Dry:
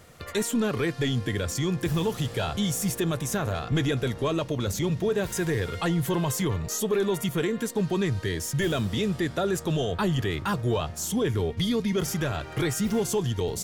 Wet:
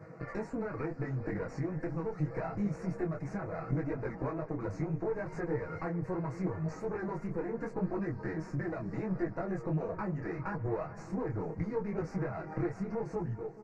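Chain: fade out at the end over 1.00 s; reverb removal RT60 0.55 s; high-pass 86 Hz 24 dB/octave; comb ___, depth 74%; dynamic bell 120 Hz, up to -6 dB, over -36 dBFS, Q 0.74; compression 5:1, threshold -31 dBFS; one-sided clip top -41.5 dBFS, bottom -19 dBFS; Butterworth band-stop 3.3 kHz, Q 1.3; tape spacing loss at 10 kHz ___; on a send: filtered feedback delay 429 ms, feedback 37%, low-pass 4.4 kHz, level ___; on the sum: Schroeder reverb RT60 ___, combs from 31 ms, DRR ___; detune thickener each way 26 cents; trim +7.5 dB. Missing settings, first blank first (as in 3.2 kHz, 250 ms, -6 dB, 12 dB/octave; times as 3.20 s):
6.2 ms, 41 dB, -16 dB, 3.8 s, 18 dB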